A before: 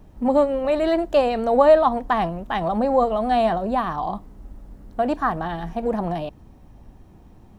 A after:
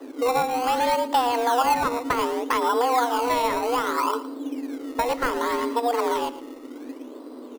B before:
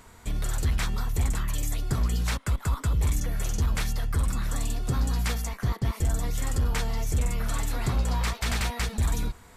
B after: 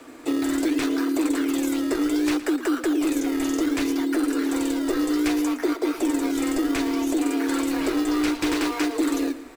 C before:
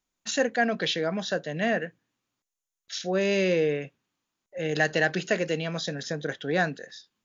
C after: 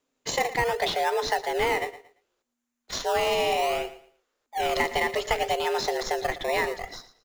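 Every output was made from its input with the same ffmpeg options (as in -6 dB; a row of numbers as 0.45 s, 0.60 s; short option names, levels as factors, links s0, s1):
-filter_complex "[0:a]afreqshift=240,highshelf=f=6400:g=-6.5,acrossover=split=310|1300[s0][s1][s2];[s0]acompressor=threshold=0.0158:ratio=4[s3];[s1]acompressor=threshold=0.02:ratio=4[s4];[s2]acompressor=threshold=0.0224:ratio=4[s5];[s3][s4][s5]amix=inputs=3:normalize=0,asplit=2[s6][s7];[s7]acrusher=samples=19:mix=1:aa=0.000001:lfo=1:lforange=19:lforate=0.65,volume=0.562[s8];[s6][s8]amix=inputs=2:normalize=0,asubboost=boost=3:cutoff=54,aecho=1:1:114|228|342:0.178|0.0462|0.012,volume=1.68"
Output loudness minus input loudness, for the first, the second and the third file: -2.5 LU, +5.0 LU, +0.5 LU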